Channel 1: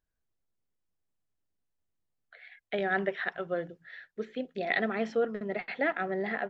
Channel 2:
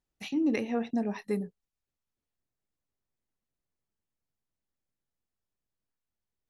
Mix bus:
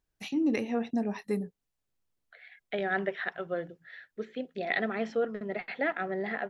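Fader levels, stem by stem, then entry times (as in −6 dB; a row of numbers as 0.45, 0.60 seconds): −1.0, 0.0 decibels; 0.00, 0.00 seconds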